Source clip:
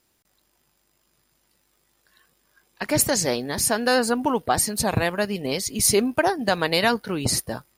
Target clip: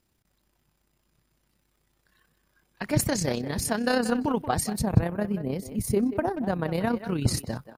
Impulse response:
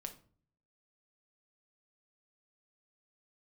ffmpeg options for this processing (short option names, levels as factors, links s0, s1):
-filter_complex "[0:a]asplit=3[s0][s1][s2];[s0]afade=t=out:st=4.8:d=0.02[s3];[s1]equalizer=f=4300:t=o:w=2.5:g=-14.5,afade=t=in:st=4.8:d=0.02,afade=t=out:st=6.93:d=0.02[s4];[s2]afade=t=in:st=6.93:d=0.02[s5];[s3][s4][s5]amix=inputs=3:normalize=0,asplit=2[s6][s7];[s7]adelay=180,highpass=300,lowpass=3400,asoftclip=type=hard:threshold=0.188,volume=0.282[s8];[s6][s8]amix=inputs=2:normalize=0,tremolo=f=32:d=0.519,bass=f=250:g=10,treble=f=4000:g=-3,volume=0.668"